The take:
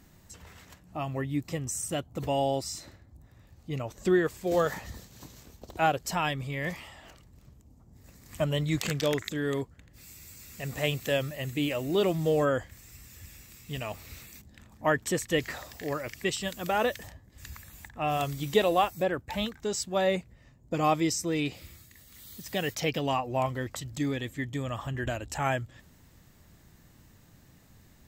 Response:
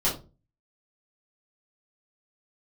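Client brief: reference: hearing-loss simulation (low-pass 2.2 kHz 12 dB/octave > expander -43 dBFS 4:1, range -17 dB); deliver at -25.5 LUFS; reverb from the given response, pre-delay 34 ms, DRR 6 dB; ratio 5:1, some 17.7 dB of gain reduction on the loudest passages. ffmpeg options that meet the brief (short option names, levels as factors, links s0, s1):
-filter_complex "[0:a]acompressor=threshold=0.0126:ratio=5,asplit=2[s0][s1];[1:a]atrim=start_sample=2205,adelay=34[s2];[s1][s2]afir=irnorm=-1:irlink=0,volume=0.15[s3];[s0][s3]amix=inputs=2:normalize=0,lowpass=2200,agate=range=0.141:threshold=0.00708:ratio=4,volume=5.96"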